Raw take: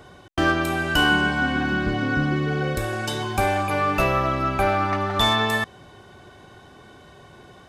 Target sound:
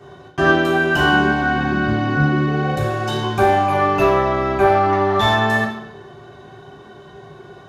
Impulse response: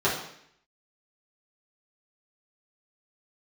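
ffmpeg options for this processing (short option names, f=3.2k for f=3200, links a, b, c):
-filter_complex "[1:a]atrim=start_sample=2205[a];[0:a][a]afir=irnorm=-1:irlink=0,volume=-10dB"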